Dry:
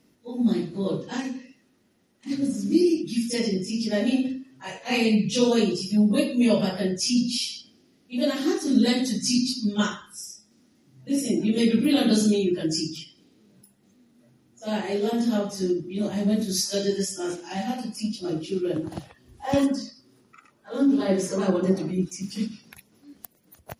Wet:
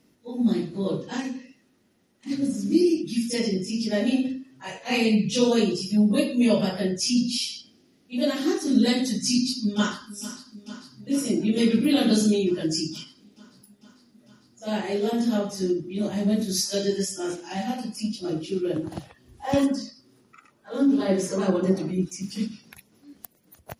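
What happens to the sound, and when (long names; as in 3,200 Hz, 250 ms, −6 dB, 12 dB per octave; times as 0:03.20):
0:09.31–0:10.10: delay throw 450 ms, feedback 80%, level −16.5 dB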